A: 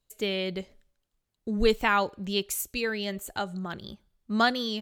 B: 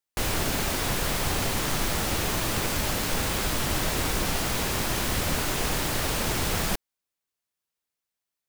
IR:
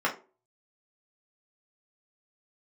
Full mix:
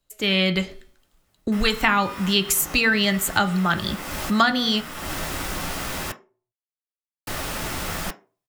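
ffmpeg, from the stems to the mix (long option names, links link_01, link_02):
-filter_complex "[0:a]bandreject=frequency=244.2:width_type=h:width=4,bandreject=frequency=488.4:width_type=h:width=4,bandreject=frequency=732.6:width_type=h:width=4,bandreject=frequency=976.8:width_type=h:width=4,bandreject=frequency=1221:width_type=h:width=4,bandreject=frequency=1465.2:width_type=h:width=4,bandreject=frequency=1709.4:width_type=h:width=4,bandreject=frequency=1953.6:width_type=h:width=4,bandreject=frequency=2197.8:width_type=h:width=4,bandreject=frequency=2442:width_type=h:width=4,bandreject=frequency=2686.2:width_type=h:width=4,bandreject=frequency=2930.4:width_type=h:width=4,bandreject=frequency=3174.6:width_type=h:width=4,bandreject=frequency=3418.8:width_type=h:width=4,bandreject=frequency=3663:width_type=h:width=4,bandreject=frequency=3907.2:width_type=h:width=4,bandreject=frequency=4151.4:width_type=h:width=4,bandreject=frequency=4395.6:width_type=h:width=4,bandreject=frequency=4639.8:width_type=h:width=4,bandreject=frequency=4884:width_type=h:width=4,bandreject=frequency=5128.2:width_type=h:width=4,bandreject=frequency=5372.4:width_type=h:width=4,bandreject=frequency=5616.6:width_type=h:width=4,bandreject=frequency=5860.8:width_type=h:width=4,bandreject=frequency=6105:width_type=h:width=4,bandreject=frequency=6349.2:width_type=h:width=4,bandreject=frequency=6593.4:width_type=h:width=4,dynaudnorm=framelen=200:gausssize=3:maxgain=13dB,volume=3dB,asplit=3[link_01][link_02][link_03];[link_02]volume=-15.5dB[link_04];[1:a]adelay=1350,volume=-3.5dB,asplit=3[link_05][link_06][link_07];[link_05]atrim=end=6.12,asetpts=PTS-STARTPTS,afade=type=out:start_time=6.116:duration=0.004:curve=hsin[link_08];[link_06]atrim=start=6.12:end=7.27,asetpts=PTS-STARTPTS,volume=0[link_09];[link_07]atrim=start=7.27,asetpts=PTS-STARTPTS,afade=type=in:duration=0.004:curve=hsin[link_10];[link_08][link_09][link_10]concat=n=3:v=0:a=1,asplit=2[link_11][link_12];[link_12]volume=-14dB[link_13];[link_03]apad=whole_len=433509[link_14];[link_11][link_14]sidechaincompress=threshold=-33dB:ratio=8:attack=16:release=290[link_15];[2:a]atrim=start_sample=2205[link_16];[link_04][link_13]amix=inputs=2:normalize=0[link_17];[link_17][link_16]afir=irnorm=-1:irlink=0[link_18];[link_01][link_15][link_18]amix=inputs=3:normalize=0,acrossover=split=270|860[link_19][link_20][link_21];[link_19]acompressor=threshold=-22dB:ratio=4[link_22];[link_20]acompressor=threshold=-36dB:ratio=4[link_23];[link_21]acompressor=threshold=-18dB:ratio=4[link_24];[link_22][link_23][link_24]amix=inputs=3:normalize=0"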